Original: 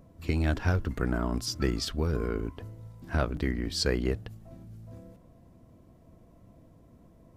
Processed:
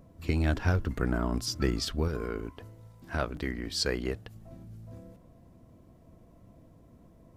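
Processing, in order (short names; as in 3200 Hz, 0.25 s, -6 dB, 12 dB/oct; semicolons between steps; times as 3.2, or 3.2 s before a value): 2.08–4.35 low shelf 350 Hz -6.5 dB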